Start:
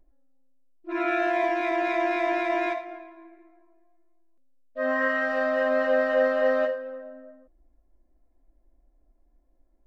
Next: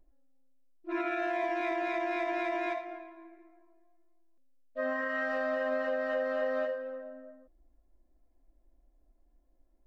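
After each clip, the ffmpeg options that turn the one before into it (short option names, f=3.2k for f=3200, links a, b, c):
-af "alimiter=limit=-20.5dB:level=0:latency=1:release=176,volume=-3dB"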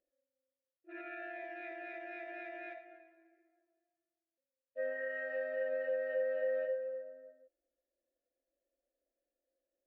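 -filter_complex "[0:a]asplit=3[a][b][c];[a]bandpass=f=530:t=q:w=8,volume=0dB[d];[b]bandpass=f=1.84k:t=q:w=8,volume=-6dB[e];[c]bandpass=f=2.48k:t=q:w=8,volume=-9dB[f];[d][e][f]amix=inputs=3:normalize=0,equalizer=f=1.4k:t=o:w=0.23:g=8.5"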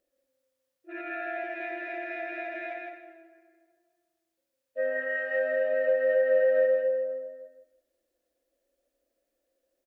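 -af "aecho=1:1:161|322|483:0.668|0.14|0.0295,volume=8.5dB"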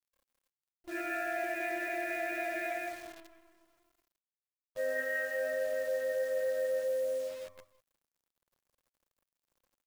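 -af "areverse,acompressor=threshold=-32dB:ratio=8,areverse,acrusher=bits=9:dc=4:mix=0:aa=0.000001,volume=1.5dB"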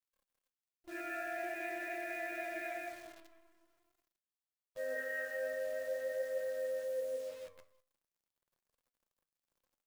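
-af "flanger=delay=4:depth=9.6:regen=79:speed=0.45:shape=sinusoidal,volume=-1dB"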